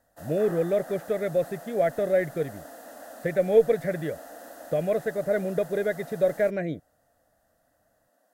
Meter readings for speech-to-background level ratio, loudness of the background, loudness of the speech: 17.5 dB, -44.0 LUFS, -26.5 LUFS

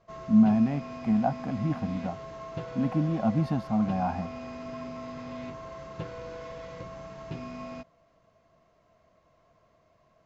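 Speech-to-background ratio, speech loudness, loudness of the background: 13.0 dB, -27.0 LUFS, -40.0 LUFS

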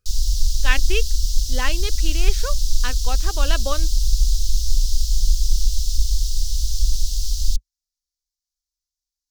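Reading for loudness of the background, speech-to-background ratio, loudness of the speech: -24.0 LUFS, -4.5 dB, -28.5 LUFS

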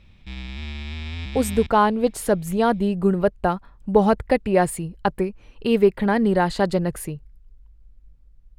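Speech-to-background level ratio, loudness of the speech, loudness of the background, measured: 12.5 dB, -21.5 LUFS, -34.0 LUFS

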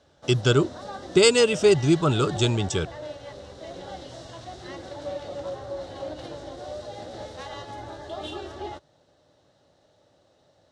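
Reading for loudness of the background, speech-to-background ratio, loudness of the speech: -38.0 LUFS, 16.5 dB, -21.5 LUFS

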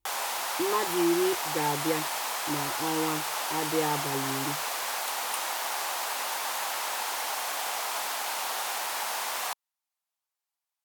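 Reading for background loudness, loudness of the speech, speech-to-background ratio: -30.5 LUFS, -32.0 LUFS, -1.5 dB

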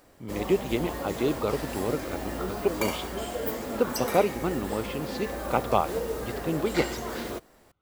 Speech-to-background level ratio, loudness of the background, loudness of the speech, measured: 3.5 dB, -33.5 LUFS, -30.0 LUFS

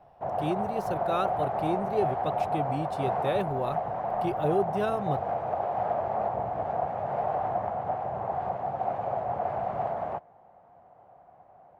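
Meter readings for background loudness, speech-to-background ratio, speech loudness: -31.0 LUFS, -1.5 dB, -32.5 LUFS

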